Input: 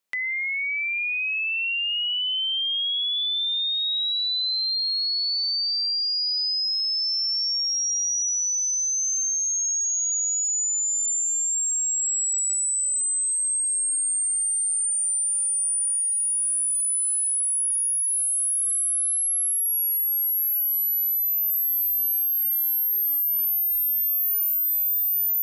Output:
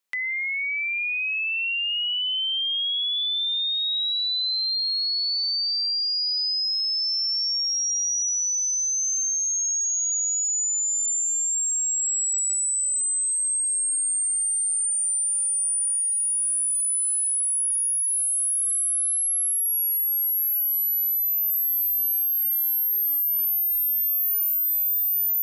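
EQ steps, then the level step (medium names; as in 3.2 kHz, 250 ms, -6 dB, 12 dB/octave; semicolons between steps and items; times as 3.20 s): bass shelf 440 Hz -6 dB; band-stop 650 Hz, Q 12; 0.0 dB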